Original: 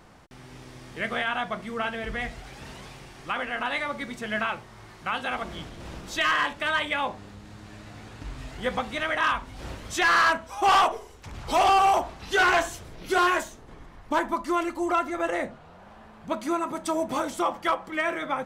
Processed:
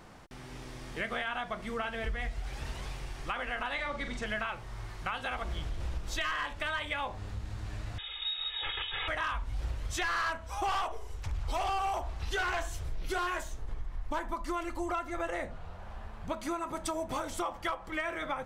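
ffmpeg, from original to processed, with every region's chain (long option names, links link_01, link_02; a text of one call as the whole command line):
ffmpeg -i in.wav -filter_complex "[0:a]asettb=1/sr,asplit=3[link_01][link_02][link_03];[link_01]atrim=end=3.744[link_04];[link_02]atrim=start=3.74:end=4.26,asetpts=PTS-STARTPTS,afade=type=in:duration=0.004:curve=qsin,afade=type=out:start_time=0.516:duration=0.004:curve=qsin,lowpass=7500,asplit=2[link_05][link_06];[link_06]adelay=45,volume=-7.5dB[link_07];[link_05][link_07]amix=inputs=2:normalize=0,atrim=end_sample=22932[link_08];[link_03]atrim=start=4.256[link_09];[link_04][link_08]acrossfade=duration=0.004:curve1=hsin:curve2=qsin[link_10];[link_10][link_09]acrossfade=duration=0.004:curve1=qsin:curve2=hsin,asettb=1/sr,asplit=3[link_11][link_12][link_13];[link_11]atrim=end=7.984[link_14];[link_12]atrim=start=7.98:end=9.08,asetpts=PTS-STARTPTS,afade=type=in:duration=0.004:curve=qsin,afade=type=out:start_time=1.096:duration=0.004:curve=qsin,aeval=exprs='(mod(22.4*val(0)+1,2)-1)/22.4':channel_layout=same,aecho=1:1:2.4:0.89,atrim=end_sample=48510,lowpass=frequency=3200:width_type=q:width=0.5098,lowpass=frequency=3200:width_type=q:width=0.6013,lowpass=frequency=3200:width_type=q:width=0.9,lowpass=frequency=3200:width_type=q:width=2.563,afreqshift=-3800[link_15];[link_13]atrim=start=9.076[link_16];[link_14][link_15]acrossfade=duration=0.004:curve1=hsin:curve2=qsin[link_17];[link_17][link_16]acrossfade=duration=0.004:curve1=qsin:curve2=hsin,asubboost=boost=9:cutoff=69,acompressor=threshold=-32dB:ratio=4" out.wav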